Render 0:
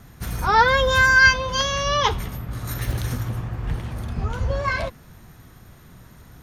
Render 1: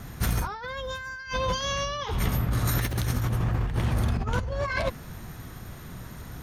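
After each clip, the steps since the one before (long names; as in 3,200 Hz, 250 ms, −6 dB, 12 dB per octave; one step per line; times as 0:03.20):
compressor whose output falls as the input rises −29 dBFS, ratio −1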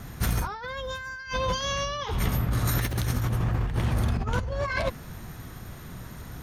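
no processing that can be heard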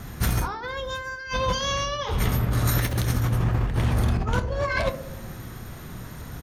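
double-tracking delay 26 ms −13 dB
feedback echo with a band-pass in the loop 63 ms, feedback 81%, band-pass 350 Hz, level −9 dB
level +2.5 dB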